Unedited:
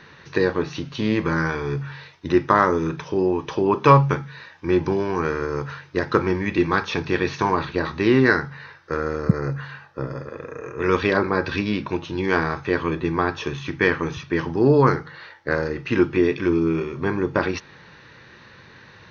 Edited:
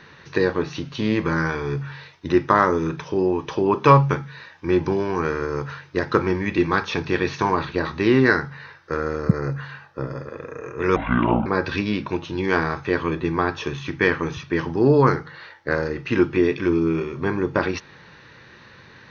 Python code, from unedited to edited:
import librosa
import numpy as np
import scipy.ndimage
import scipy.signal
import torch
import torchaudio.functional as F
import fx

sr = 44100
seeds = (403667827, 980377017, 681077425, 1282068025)

y = fx.edit(x, sr, fx.speed_span(start_s=10.96, length_s=0.3, speed=0.6), tone=tone)